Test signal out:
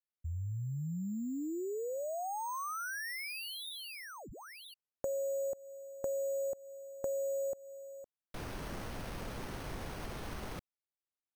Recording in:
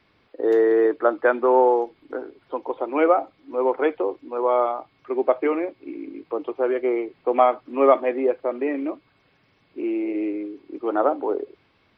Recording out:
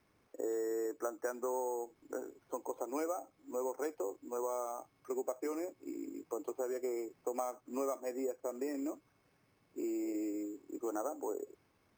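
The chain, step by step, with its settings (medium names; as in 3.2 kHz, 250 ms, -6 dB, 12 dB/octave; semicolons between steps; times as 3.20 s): compression 5:1, threshold -26 dBFS; low-pass 1.8 kHz 6 dB/octave; careless resampling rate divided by 6×, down none, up hold; trim -8.5 dB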